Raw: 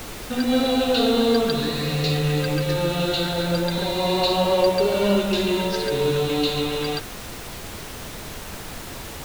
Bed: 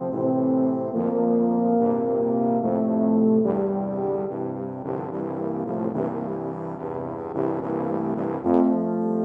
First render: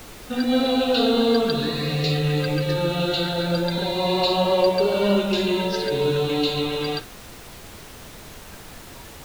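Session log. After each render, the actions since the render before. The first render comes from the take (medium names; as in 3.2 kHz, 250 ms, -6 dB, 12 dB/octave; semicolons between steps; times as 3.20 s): noise print and reduce 6 dB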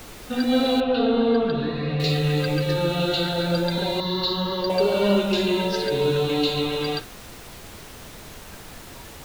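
0.80–2.00 s: distance through air 350 m; 4.00–4.70 s: static phaser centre 2.5 kHz, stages 6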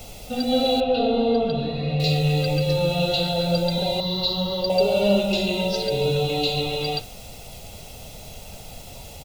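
high-order bell 1.5 kHz -12.5 dB 1 oct; comb 1.5 ms, depth 60%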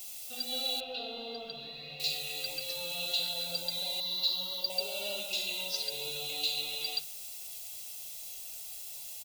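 pre-emphasis filter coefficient 0.97; hum notches 50/100/150/200 Hz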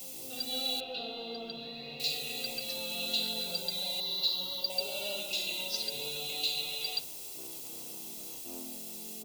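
add bed -28.5 dB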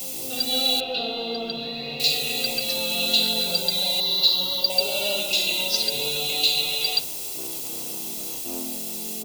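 trim +11.5 dB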